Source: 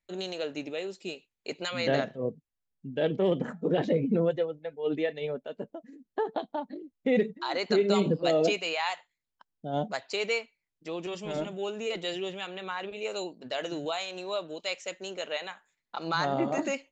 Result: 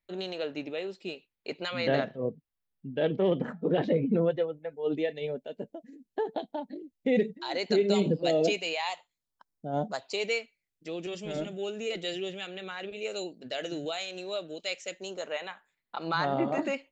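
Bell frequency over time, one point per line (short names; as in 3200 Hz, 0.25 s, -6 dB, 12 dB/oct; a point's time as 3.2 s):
bell -12 dB 0.58 oct
4.44 s 6900 Hz
5.09 s 1200 Hz
8.69 s 1200 Hz
9.72 s 3600 Hz
10.36 s 1000 Hz
14.91 s 1000 Hz
15.49 s 6300 Hz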